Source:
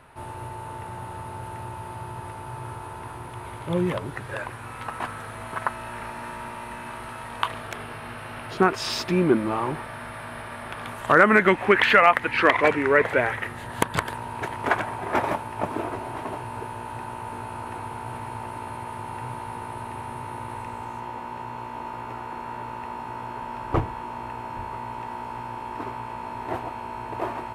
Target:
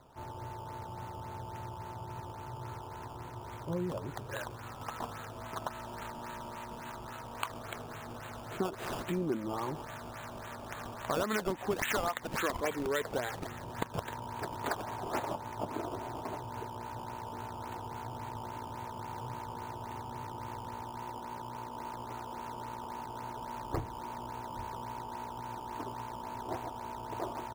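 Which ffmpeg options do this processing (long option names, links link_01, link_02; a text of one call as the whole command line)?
ffmpeg -i in.wav -filter_complex "[0:a]aresample=11025,aresample=44100,acrossover=split=1200[link_01][link_02];[link_02]acrusher=samples=15:mix=1:aa=0.000001:lfo=1:lforange=15:lforate=3.6[link_03];[link_01][link_03]amix=inputs=2:normalize=0,acompressor=threshold=-26dB:ratio=2.5,volume=-6.5dB" out.wav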